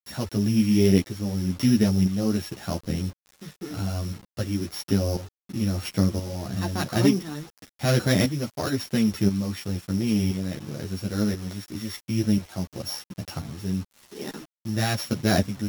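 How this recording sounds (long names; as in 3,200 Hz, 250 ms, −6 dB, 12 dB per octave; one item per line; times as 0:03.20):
a buzz of ramps at a fixed pitch in blocks of 8 samples
tremolo saw up 0.97 Hz, depth 65%
a quantiser's noise floor 8 bits, dither none
a shimmering, thickened sound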